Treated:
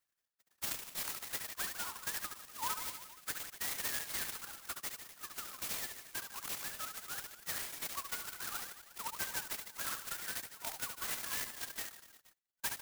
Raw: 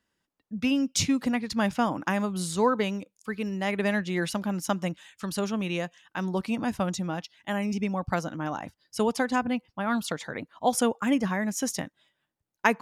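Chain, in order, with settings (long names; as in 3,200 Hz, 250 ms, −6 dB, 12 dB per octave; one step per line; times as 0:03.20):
three sine waves on the formant tracks
Bessel high-pass filter 2,400 Hz, order 6
spectral tilt −4 dB per octave
downward compressor 6 to 1, threshold −45 dBFS, peak gain reduction 12.5 dB
on a send: reverse bouncing-ball delay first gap 70 ms, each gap 1.15×, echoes 5
on the sum: reverb reduction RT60 0.69 s
converter with an unsteady clock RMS 0.13 ms
level +9 dB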